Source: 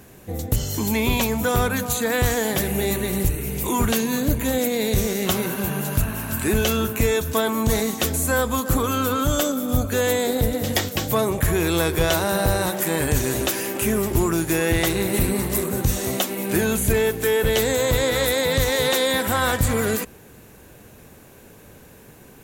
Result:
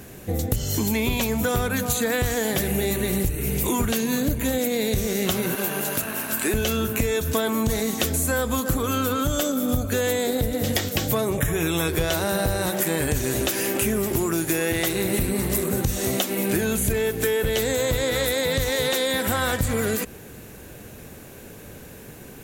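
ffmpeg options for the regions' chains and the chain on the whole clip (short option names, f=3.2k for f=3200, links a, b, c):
-filter_complex "[0:a]asettb=1/sr,asplit=3[a][b][c];[a]atrim=end=5.554[d];[b]atrim=start=5.55:end=6.54,asetpts=PTS-STARTPTS,afade=t=in:d=0.004:c=qsin,afade=t=out:st=0.986:d=0.004:c=qsin,highpass=310,aeval=exprs='sgn(val(0))*max(abs(val(0))-0.00596,0)':c=same[e];[c]atrim=start=6.536[f];[d][e]acrossfade=d=0.004:c1=hsin:c2=qsin[g];[g][f]acrossfade=d=0.004:c1=qsin:c2=hsin,asettb=1/sr,asplit=3[h][i][j];[h]atrim=end=11.374[k];[i]atrim=start=11.37:end=11.88,asetpts=PTS-STARTPTS,afade=t=in:d=0.004:c=qsin,afade=t=out:st=0.506:d=0.004:c=qsin,asuperstop=centerf=4500:order=8:qfactor=3.9,aecho=1:1:7:0.48,atrim=end_sample=22491[l];[j]atrim=start=11.876[m];[k][l]acrossfade=d=0.004:c1=hsin:c2=qsin[n];[n][m]acrossfade=d=0.004:c1=qsin:c2=hsin,asettb=1/sr,asplit=3[o][p][q];[o]atrim=end=14.044[r];[p]atrim=start=14.04:end=15.04,asetpts=PTS-STARTPTS,afade=t=in:d=0.004:c=qsin,afade=t=out:st=0.996:d=0.004:c=qsin,highpass=f=150:p=1,equalizer=f=14k:t=o:w=0.95:g=3[s];[q]atrim=start=15.036[t];[r][s]acrossfade=d=0.004:c1=hsin:c2=qsin[u];[u][t]acrossfade=d=0.004:c1=qsin:c2=hsin,equalizer=f=980:t=o:w=0.67:g=-4,acompressor=threshold=-25dB:ratio=6,volume=5dB"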